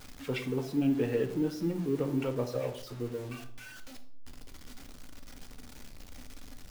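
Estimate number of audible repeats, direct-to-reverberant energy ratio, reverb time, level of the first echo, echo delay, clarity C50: no echo, 6.5 dB, 0.60 s, no echo, no echo, 12.0 dB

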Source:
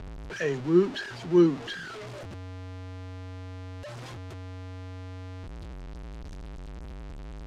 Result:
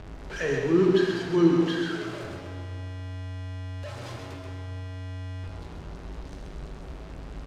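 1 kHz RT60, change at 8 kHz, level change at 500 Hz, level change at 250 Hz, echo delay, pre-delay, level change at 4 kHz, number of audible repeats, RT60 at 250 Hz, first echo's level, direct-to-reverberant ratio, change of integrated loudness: 1.9 s, no reading, +2.5 dB, +2.0 dB, 132 ms, 8 ms, +3.0 dB, 1, 1.9 s, -6.0 dB, -1.0 dB, +2.5 dB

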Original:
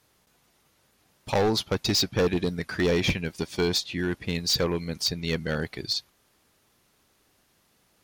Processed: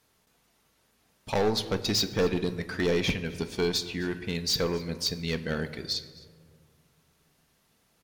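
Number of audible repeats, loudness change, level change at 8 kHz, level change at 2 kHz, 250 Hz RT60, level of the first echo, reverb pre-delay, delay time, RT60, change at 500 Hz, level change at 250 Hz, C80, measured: 1, -2.5 dB, -2.5 dB, -2.5 dB, 2.3 s, -22.0 dB, 4 ms, 261 ms, 1.8 s, -1.5 dB, -2.5 dB, 14.5 dB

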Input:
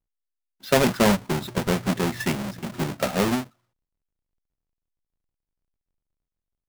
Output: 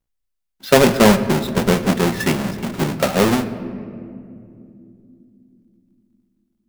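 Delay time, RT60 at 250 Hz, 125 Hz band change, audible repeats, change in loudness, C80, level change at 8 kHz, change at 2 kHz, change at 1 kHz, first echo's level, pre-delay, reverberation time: no echo, 4.7 s, +6.5 dB, no echo, +7.0 dB, 13.0 dB, +6.0 dB, +6.5 dB, +6.5 dB, no echo, 4 ms, 2.7 s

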